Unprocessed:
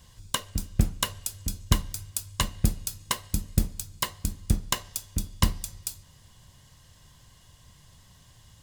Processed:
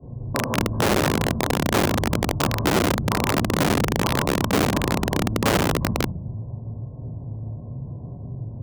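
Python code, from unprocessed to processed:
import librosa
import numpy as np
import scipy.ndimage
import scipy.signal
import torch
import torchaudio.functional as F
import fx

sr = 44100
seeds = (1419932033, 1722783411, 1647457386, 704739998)

p1 = scipy.signal.sosfilt(scipy.signal.cheby2(4, 70, 3600.0, 'lowpass', fs=sr, output='sos'), x)
p2 = p1 + fx.echo_multitap(p1, sr, ms=(53, 91, 147, 156, 384), db=(-10.5, -11.0, -17.5, -5.0, -11.0), dry=0)
p3 = fx.room_shoebox(p2, sr, seeds[0], volume_m3=110.0, walls='mixed', distance_m=3.2)
p4 = fx.env_lowpass(p3, sr, base_hz=380.0, full_db=-6.0)
p5 = fx.over_compress(p4, sr, threshold_db=-23.0, ratio=-1.0)
p6 = p4 + (p5 * 10.0 ** (1.0 / 20.0))
p7 = (np.mod(10.0 ** (6.0 / 20.0) * p6 + 1.0, 2.0) - 1.0) / 10.0 ** (6.0 / 20.0)
p8 = scipy.signal.sosfilt(scipy.signal.butter(2, 47.0, 'highpass', fs=sr, output='sos'), p7)
p9 = fx.low_shelf(p8, sr, hz=64.0, db=-11.5)
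p10 = fx.band_squash(p9, sr, depth_pct=40)
y = p10 * 10.0 ** (-7.0 / 20.0)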